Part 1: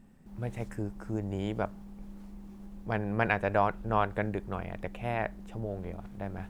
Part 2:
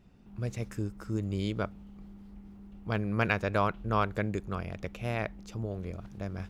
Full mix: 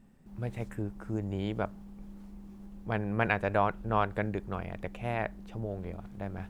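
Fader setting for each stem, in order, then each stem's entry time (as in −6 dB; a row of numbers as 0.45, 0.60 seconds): −2.5, −13.0 decibels; 0.00, 0.00 seconds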